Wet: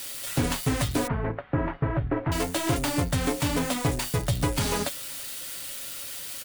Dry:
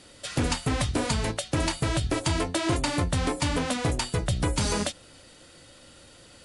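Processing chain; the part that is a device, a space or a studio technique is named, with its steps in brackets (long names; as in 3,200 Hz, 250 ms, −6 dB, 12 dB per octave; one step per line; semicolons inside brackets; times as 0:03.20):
budget class-D amplifier (gap after every zero crossing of 0.11 ms; spike at every zero crossing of −22.5 dBFS)
0:01.07–0:02.32: inverse Chebyshev low-pass filter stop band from 7,400 Hz, stop band 70 dB
comb filter 7.2 ms, depth 37%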